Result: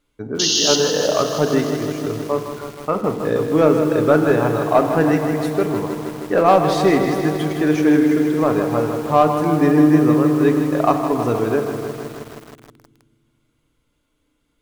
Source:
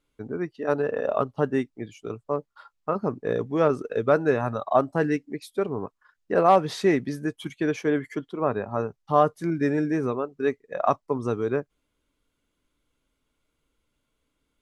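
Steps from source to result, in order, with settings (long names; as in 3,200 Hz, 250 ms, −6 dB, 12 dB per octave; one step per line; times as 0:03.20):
sound drawn into the spectrogram noise, 0:00.39–0:00.76, 2,700–6,800 Hz −24 dBFS
in parallel at −4 dB: hard clipping −17 dBFS, distortion −11 dB
on the sum: feedback delay network reverb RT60 1.8 s, low-frequency decay 1.55×, high-frequency decay 0.4×, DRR 7 dB
feedback echo at a low word length 158 ms, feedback 80%, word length 6 bits, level −8.5 dB
level +1.5 dB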